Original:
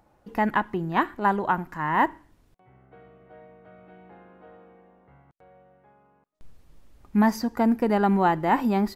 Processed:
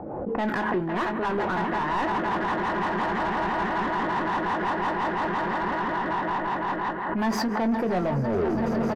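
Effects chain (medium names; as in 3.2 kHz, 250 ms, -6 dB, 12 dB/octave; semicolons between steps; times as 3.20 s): tape stop on the ending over 1.10 s; level-controlled noise filter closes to 550 Hz, open at -20.5 dBFS; on a send: echo with a slow build-up 168 ms, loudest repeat 8, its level -12 dB; on the sum: rotary cabinet horn 5.5 Hz; reverse; compression 4:1, threshold -35 dBFS, peak gain reduction 15 dB; reverse; overdrive pedal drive 28 dB, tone 1.2 kHz, clips at -18.5 dBFS; doubling 22 ms -9 dB; swell ahead of each attack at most 32 dB/s; trim +1.5 dB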